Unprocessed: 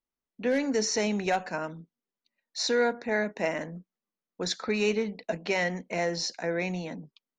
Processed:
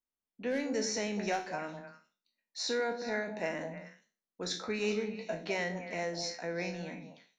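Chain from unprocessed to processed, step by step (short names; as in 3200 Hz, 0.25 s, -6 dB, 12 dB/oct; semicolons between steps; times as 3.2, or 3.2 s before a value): spectral trails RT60 0.34 s; on a send: delay with a stepping band-pass 0.102 s, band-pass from 250 Hz, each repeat 1.4 oct, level -4 dB; on the sum: gain -7.5 dB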